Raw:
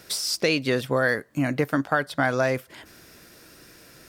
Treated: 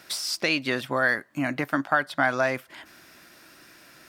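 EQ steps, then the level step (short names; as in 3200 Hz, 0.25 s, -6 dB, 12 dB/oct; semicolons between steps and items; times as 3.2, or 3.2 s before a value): tone controls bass -5 dB, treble -6 dB; low shelf 130 Hz -10 dB; bell 460 Hz -12 dB 0.42 oct; +2.0 dB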